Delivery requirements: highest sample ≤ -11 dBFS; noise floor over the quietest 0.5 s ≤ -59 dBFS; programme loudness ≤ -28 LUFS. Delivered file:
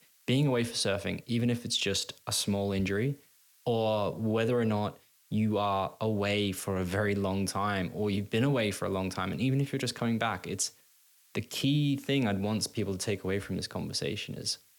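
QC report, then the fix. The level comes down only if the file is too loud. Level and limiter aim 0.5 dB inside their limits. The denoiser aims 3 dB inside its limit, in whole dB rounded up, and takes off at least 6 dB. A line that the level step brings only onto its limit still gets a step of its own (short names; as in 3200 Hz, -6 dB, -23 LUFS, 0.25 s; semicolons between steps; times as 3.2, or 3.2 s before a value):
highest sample -14.5 dBFS: OK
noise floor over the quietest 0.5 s -63 dBFS: OK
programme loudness -31.0 LUFS: OK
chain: none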